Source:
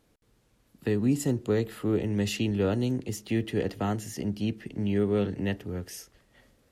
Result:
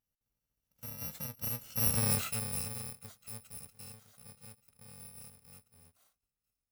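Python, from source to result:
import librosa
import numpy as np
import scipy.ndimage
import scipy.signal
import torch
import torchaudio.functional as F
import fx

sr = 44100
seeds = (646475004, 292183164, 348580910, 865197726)

y = fx.bit_reversed(x, sr, seeds[0], block=128)
y = fx.doppler_pass(y, sr, speed_mps=15, closest_m=2.5, pass_at_s=1.99)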